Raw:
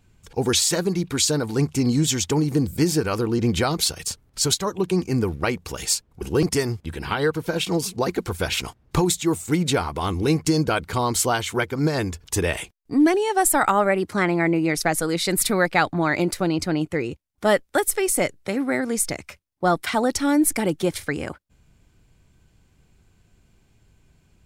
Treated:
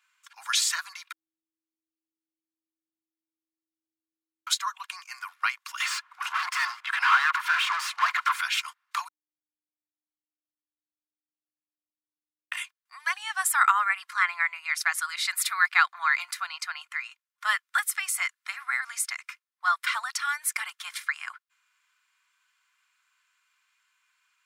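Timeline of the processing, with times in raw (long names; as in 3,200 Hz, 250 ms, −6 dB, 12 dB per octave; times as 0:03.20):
0:01.12–0:04.47: beep over 321 Hz −15 dBFS
0:05.80–0:08.41: mid-hump overdrive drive 32 dB, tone 1,100 Hz, clips at −8 dBFS
0:09.08–0:12.52: beep over 304 Hz −21 dBFS
whole clip: Butterworth high-pass 1,100 Hz 48 dB per octave; high-shelf EQ 2,600 Hz −12 dB; comb filter 2.9 ms, depth 31%; level +5 dB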